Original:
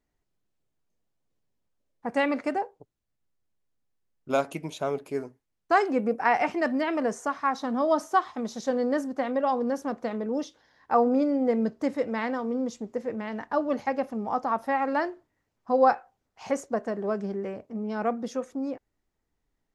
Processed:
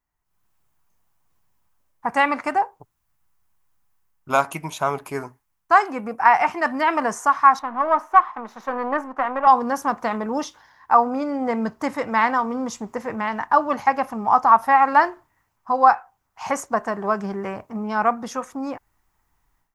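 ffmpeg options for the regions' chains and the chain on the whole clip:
-filter_complex "[0:a]asettb=1/sr,asplit=3[a][b][c];[a]atrim=end=7.594[d];[b]atrim=start=7.59:end=9.47,asetpts=PTS-STARTPTS,afade=t=in:d=0.004:c=qsin,afade=t=out:st=1.876:d=0.004:c=qsin,aeval=exprs='if(lt(val(0),0),0.447*val(0),val(0))':c=same,acrossover=split=240 2600:gain=0.126 1 0.1[e][f][g];[e][f][g]amix=inputs=3:normalize=0[h];[c]atrim=start=9.466[i];[d][h]acrossfade=d=0.004:c1=hsin:c2=qsin[j];[j][i]acrossfade=d=0.004:c1=qsin:c2=hsin,highshelf=f=4.6k:g=8.5,dynaudnorm=f=220:g=3:m=15dB,equalizer=f=250:t=o:w=1:g=-6,equalizer=f=500:t=o:w=1:g=-10,equalizer=f=1k:t=o:w=1:g=10,equalizer=f=4k:t=o:w=1:g=-6,equalizer=f=8k:t=o:w=1:g=-4,volume=-4dB"

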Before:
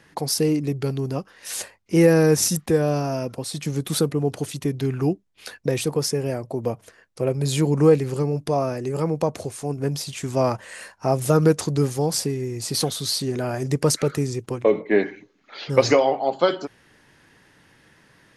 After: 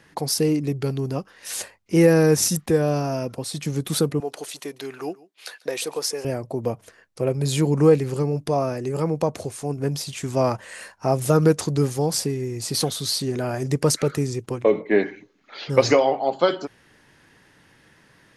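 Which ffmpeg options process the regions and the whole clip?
-filter_complex "[0:a]asettb=1/sr,asplit=3[a][b][c];[a]atrim=end=4.204[d];[b]atrim=start=4.2:end=6.25,asetpts=PTS-STARTPTS,afade=t=in:d=0.004:c=qsin,afade=t=out:st=2.046:d=0.004:c=qsin,highpass=520,equalizer=f=4.1k:t=o:w=0.23:g=2.5,aecho=1:1:142:0.0794,atrim=end_sample=90405[e];[c]atrim=start=6.246[f];[d][e]acrossfade=d=0.004:c1=hsin:c2=qsin[g];[g][f]acrossfade=d=0.004:c1=qsin:c2=hsin"

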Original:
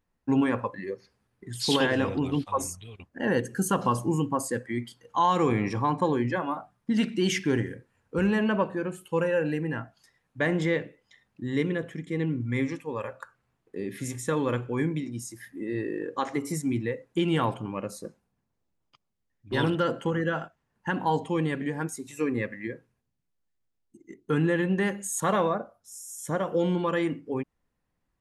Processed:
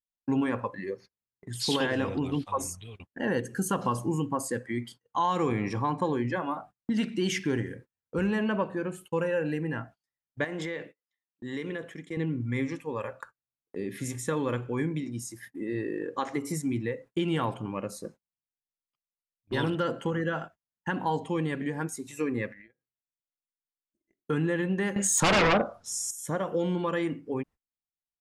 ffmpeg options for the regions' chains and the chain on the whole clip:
-filter_complex "[0:a]asettb=1/sr,asplit=3[a][b][c];[a]atrim=end=10.444[d];[b]atrim=start=10.44:end=12.17,asetpts=PTS-STARTPTS,afade=t=in:d=0.004:c=qsin,afade=t=out:st=1.726:d=0.004:c=qsin,highpass=f=390:p=1,acompressor=threshold=-29dB:ratio=10:attack=3.2:release=140:knee=1:detection=peak[e];[c]atrim=start=12.166[f];[d][e]acrossfade=d=0.004:c1=hsin:c2=qsin[g];[g][f]acrossfade=d=0.004:c1=qsin:c2=hsin,asettb=1/sr,asplit=3[h][i][j];[h]atrim=end=22.514[k];[i]atrim=start=22.51:end=24.21,asetpts=PTS-STARTPTS,afade=t=in:d=0.004:c=qsin,afade=t=out:st=1.696:d=0.004:c=qsin,equalizer=f=2.6k:t=o:w=1.8:g=7.5,acompressor=threshold=-44dB:ratio=8:attack=3.2:release=140:knee=1:detection=peak,tremolo=f=280:d=0.4[l];[j]atrim=start=24.206[m];[k][l]acrossfade=d=0.004:c1=hsin:c2=qsin[n];[n][m]acrossfade=d=0.004:c1=qsin:c2=hsin,asettb=1/sr,asplit=3[o][p][q];[o]atrim=end=24.964[r];[p]atrim=start=24.96:end=26.11,asetpts=PTS-STARTPTS,afade=t=in:d=0.004:c=qsin,afade=t=out:st=1.146:d=0.004:c=qsin,lowpass=6.7k,aeval=exprs='0.211*sin(PI/2*3.98*val(0)/0.211)':c=same[s];[q]atrim=start=26.106[t];[r][s]acrossfade=d=0.004:c1=hsin:c2=qsin[u];[u][t]acrossfade=d=0.004:c1=qsin:c2=hsin,agate=range=-30dB:threshold=-46dB:ratio=16:detection=peak,acompressor=threshold=-29dB:ratio=1.5"

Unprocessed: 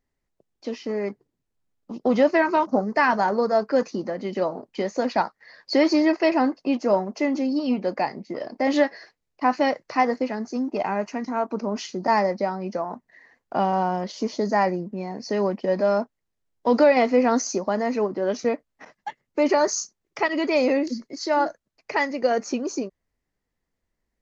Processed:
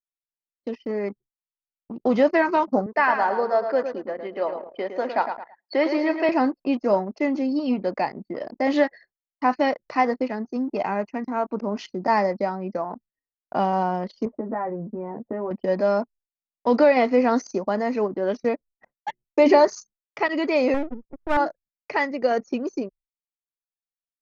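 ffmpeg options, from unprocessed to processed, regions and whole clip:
-filter_complex "[0:a]asettb=1/sr,asplit=3[a][b][c];[a]atrim=end=2.864[d];[b]atrim=start=2.86:end=6.29,asetpts=PTS-STARTPTS,afade=t=in:d=0.004:c=qsin,afade=t=out:st=3.426:d=0.004:c=qsin,highpass=400,lowpass=3.3k,aecho=1:1:109|218|327|436:0.398|0.151|0.0575|0.0218,atrim=end_sample=151263[e];[c]atrim=start=6.286[f];[d][e]acrossfade=d=0.004:c1=hsin:c2=qsin[g];[g][f]acrossfade=d=0.004:c1=qsin:c2=hsin,asettb=1/sr,asplit=3[h][i][j];[h]atrim=end=14.254[k];[i]atrim=start=14.25:end=15.51,asetpts=PTS-STARTPTS,afade=t=in:d=0.004:c=qsin,afade=t=out:st=1.256:d=0.004:c=qsin,lowpass=f=1.6k:w=0.5412,lowpass=f=1.6k:w=1.3066,acompressor=threshold=-25dB:ratio=5:attack=3.2:release=140:knee=1:detection=peak,asplit=2[l][m];[m]adelay=13,volume=-4dB[n];[l][n]amix=inputs=2:normalize=0,atrim=end_sample=55566[o];[j]atrim=start=15.506[p];[k][o]acrossfade=d=0.004:c1=hsin:c2=qsin[q];[q][p]acrossfade=d=0.004:c1=qsin:c2=hsin,asettb=1/sr,asplit=3[r][s][t];[r]atrim=end=19.084[u];[s]atrim=start=19.08:end=19.65,asetpts=PTS-STARTPTS,afade=t=in:d=0.004:c=qsin,afade=t=out:st=0.566:d=0.004:c=qsin,equalizer=f=1.4k:t=o:w=0.39:g=-11.5,bandreject=f=60:t=h:w=6,bandreject=f=120:t=h:w=6,bandreject=f=180:t=h:w=6,bandreject=f=240:t=h:w=6,bandreject=f=300:t=h:w=6,bandreject=f=360:t=h:w=6,bandreject=f=420:t=h:w=6,acontrast=51[v];[t]atrim=start=19.646[w];[u][v]acrossfade=d=0.004:c1=hsin:c2=qsin[x];[x][w]acrossfade=d=0.004:c1=qsin:c2=hsin,asettb=1/sr,asplit=3[y][z][aa];[y]atrim=end=20.744[ab];[z]atrim=start=20.74:end=21.37,asetpts=PTS-STARTPTS,afade=t=in:d=0.004:c=qsin,afade=t=out:st=0.626:d=0.004:c=qsin,lowpass=f=2k:w=0.5412,lowpass=f=2k:w=1.3066,equalizer=f=1.1k:w=1.5:g=8,aeval=exprs='max(val(0),0)':c=same[ac];[aa]atrim=start=21.366[ad];[ab][ac]acrossfade=d=0.004:c1=hsin:c2=qsin[ae];[ae][ad]acrossfade=d=0.004:c1=qsin:c2=hsin,acrossover=split=4400[af][ag];[ag]acompressor=threshold=-48dB:ratio=4:attack=1:release=60[ah];[af][ah]amix=inputs=2:normalize=0,agate=range=-33dB:threshold=-42dB:ratio=3:detection=peak,anlmdn=1"

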